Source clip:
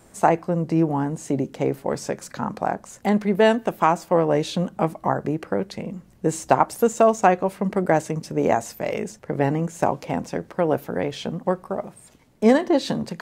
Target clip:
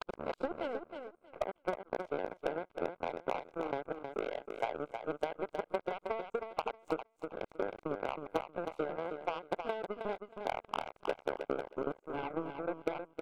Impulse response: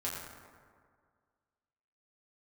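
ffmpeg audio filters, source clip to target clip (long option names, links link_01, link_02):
-filter_complex "[0:a]areverse,highpass=frequency=390:width=0.5412,highpass=frequency=390:width=1.3066,equalizer=frequency=5400:width_type=o:width=1.2:gain=-10,acrossover=split=620|2900[link_01][link_02][link_03];[link_01]acontrast=42[link_04];[link_04][link_02][link_03]amix=inputs=3:normalize=0,alimiter=limit=-11dB:level=0:latency=1:release=117,acompressor=threshold=-29dB:ratio=20,aemphasis=mode=reproduction:type=75fm,aeval=exprs='0.0891*(cos(1*acos(clip(val(0)/0.0891,-1,1)))-cos(1*PI/2))+0.0251*(cos(3*acos(clip(val(0)/0.0891,-1,1)))-cos(3*PI/2))+0.000891*(cos(6*acos(clip(val(0)/0.0891,-1,1)))-cos(6*PI/2))+0.00224*(cos(7*acos(clip(val(0)/0.0891,-1,1)))-cos(7*PI/2))':channel_layout=same,asuperstop=centerf=1800:order=4:qfactor=4.4,aecho=1:1:316|632|948:0.447|0.0804|0.0145"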